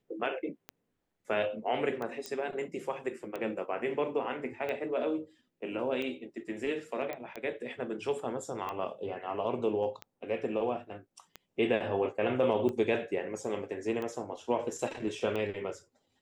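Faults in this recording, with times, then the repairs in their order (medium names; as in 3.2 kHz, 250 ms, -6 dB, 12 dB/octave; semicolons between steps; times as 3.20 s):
tick 45 rpm -24 dBFS
2.26 s: pop -22 dBFS
7.13 s: pop -24 dBFS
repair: de-click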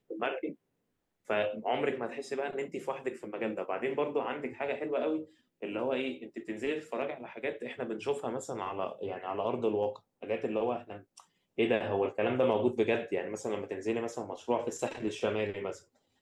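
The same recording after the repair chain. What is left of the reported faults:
nothing left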